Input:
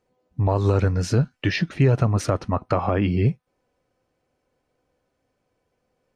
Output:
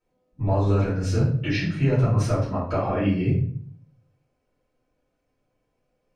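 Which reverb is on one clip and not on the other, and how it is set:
rectangular room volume 70 cubic metres, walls mixed, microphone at 2.8 metres
level −14.5 dB

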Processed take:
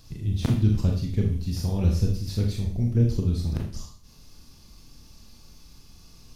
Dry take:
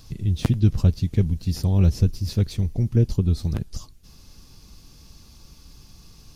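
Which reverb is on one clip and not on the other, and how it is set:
four-comb reverb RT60 0.47 s, combs from 26 ms, DRR 0 dB
level −5 dB

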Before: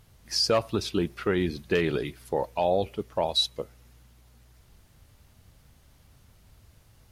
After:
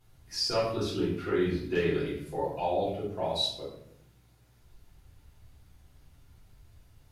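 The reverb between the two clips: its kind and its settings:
rectangular room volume 160 cubic metres, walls mixed, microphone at 3.3 metres
level −15 dB

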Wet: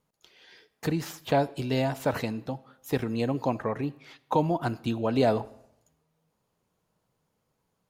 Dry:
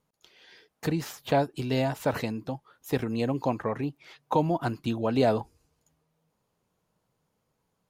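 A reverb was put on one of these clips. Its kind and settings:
comb and all-pass reverb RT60 0.79 s, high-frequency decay 0.85×, pre-delay 15 ms, DRR 19 dB

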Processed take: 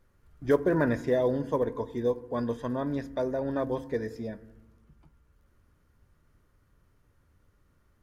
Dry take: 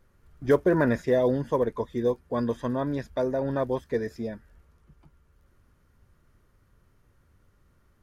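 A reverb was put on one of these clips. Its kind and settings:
feedback delay network reverb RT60 0.98 s, low-frequency decay 1.6×, high-frequency decay 0.4×, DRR 14.5 dB
level −3 dB

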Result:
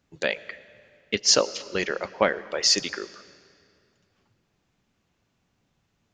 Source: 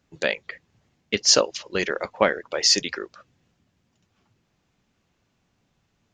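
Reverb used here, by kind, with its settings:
comb and all-pass reverb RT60 2.4 s, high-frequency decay 0.85×, pre-delay 60 ms, DRR 18 dB
level −2 dB

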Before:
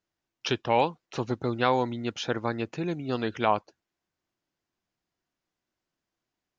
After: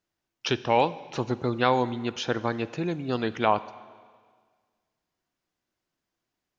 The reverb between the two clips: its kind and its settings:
four-comb reverb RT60 1.7 s, combs from 32 ms, DRR 16 dB
level +1.5 dB

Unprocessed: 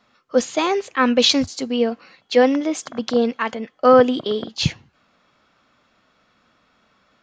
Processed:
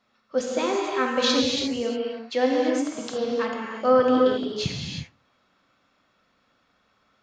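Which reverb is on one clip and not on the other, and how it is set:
reverb whose tail is shaped and stops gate 380 ms flat, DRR −1.5 dB
level −9 dB

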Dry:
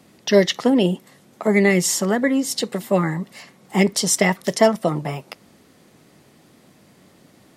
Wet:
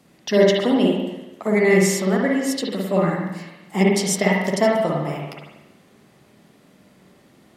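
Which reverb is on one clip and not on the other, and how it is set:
spring reverb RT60 1 s, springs 48/53 ms, chirp 25 ms, DRR −2 dB
level −4.5 dB

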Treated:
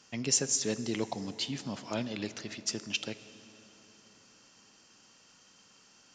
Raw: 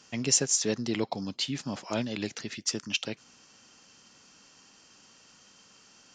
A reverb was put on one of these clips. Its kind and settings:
dense smooth reverb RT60 4.3 s, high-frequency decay 0.6×, DRR 13 dB
level −3.5 dB

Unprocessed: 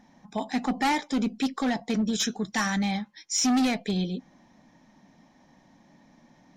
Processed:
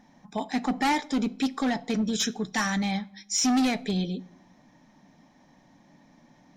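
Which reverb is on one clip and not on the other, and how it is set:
rectangular room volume 2,200 cubic metres, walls furnished, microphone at 0.37 metres

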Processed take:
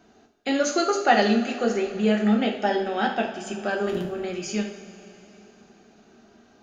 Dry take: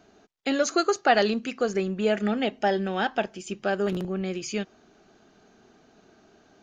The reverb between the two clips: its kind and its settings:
coupled-rooms reverb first 0.47 s, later 3.7 s, from −17 dB, DRR 0 dB
level −1.5 dB

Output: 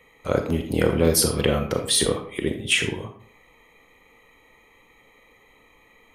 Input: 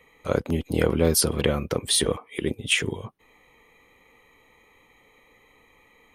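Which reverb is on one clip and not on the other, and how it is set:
comb and all-pass reverb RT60 0.53 s, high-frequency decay 0.7×, pre-delay 0 ms, DRR 5 dB
level +1 dB

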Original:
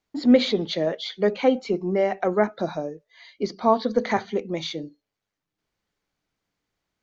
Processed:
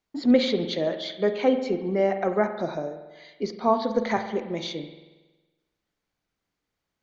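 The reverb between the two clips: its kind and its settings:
spring reverb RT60 1.2 s, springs 46 ms, chirp 25 ms, DRR 8 dB
level −2.5 dB

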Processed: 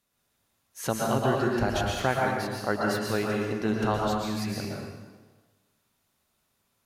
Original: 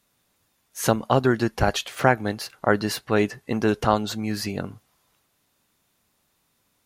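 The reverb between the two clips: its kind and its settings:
dense smooth reverb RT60 1.3 s, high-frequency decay 0.85×, pre-delay 105 ms, DRR −2.5 dB
level −8.5 dB

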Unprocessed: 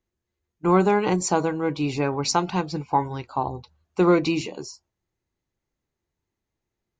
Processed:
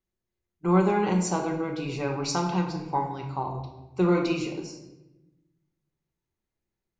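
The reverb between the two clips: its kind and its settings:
rectangular room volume 430 cubic metres, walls mixed, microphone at 1.1 metres
level −7 dB

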